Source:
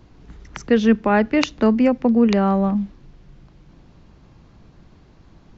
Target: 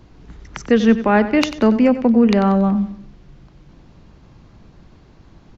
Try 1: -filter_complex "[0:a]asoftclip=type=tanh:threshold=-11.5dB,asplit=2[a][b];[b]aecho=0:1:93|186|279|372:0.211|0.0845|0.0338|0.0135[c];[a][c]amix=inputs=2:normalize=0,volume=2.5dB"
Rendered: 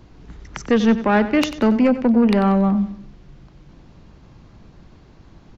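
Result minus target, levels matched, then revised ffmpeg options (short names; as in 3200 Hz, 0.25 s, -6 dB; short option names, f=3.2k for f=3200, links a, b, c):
soft clip: distortion +14 dB
-filter_complex "[0:a]asoftclip=type=tanh:threshold=-2.5dB,asplit=2[a][b];[b]aecho=0:1:93|186|279|372:0.211|0.0845|0.0338|0.0135[c];[a][c]amix=inputs=2:normalize=0,volume=2.5dB"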